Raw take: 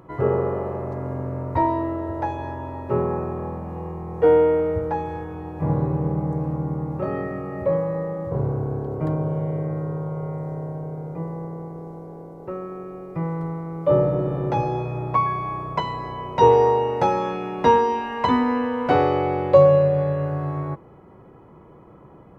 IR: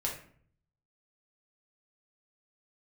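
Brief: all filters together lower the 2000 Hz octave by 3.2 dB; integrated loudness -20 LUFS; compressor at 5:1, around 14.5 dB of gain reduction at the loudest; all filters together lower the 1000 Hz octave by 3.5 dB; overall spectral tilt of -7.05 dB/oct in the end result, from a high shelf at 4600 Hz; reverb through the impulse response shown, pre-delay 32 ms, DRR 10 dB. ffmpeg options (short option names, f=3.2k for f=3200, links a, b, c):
-filter_complex "[0:a]equalizer=f=1k:t=o:g=-3.5,equalizer=f=2k:t=o:g=-3.5,highshelf=f=4.6k:g=4,acompressor=threshold=-26dB:ratio=5,asplit=2[a][b];[1:a]atrim=start_sample=2205,adelay=32[c];[b][c]afir=irnorm=-1:irlink=0,volume=-14dB[d];[a][d]amix=inputs=2:normalize=0,volume=10dB"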